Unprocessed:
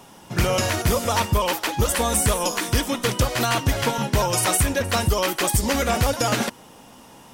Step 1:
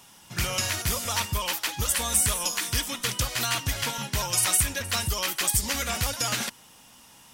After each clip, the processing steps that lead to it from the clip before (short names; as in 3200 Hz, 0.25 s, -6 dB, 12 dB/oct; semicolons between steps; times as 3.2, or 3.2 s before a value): passive tone stack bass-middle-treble 5-5-5; gain +6 dB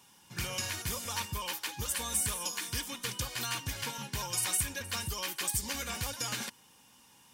notch comb 660 Hz; gain -7 dB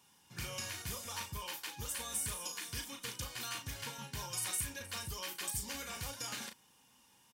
doubler 36 ms -6.5 dB; gain -7 dB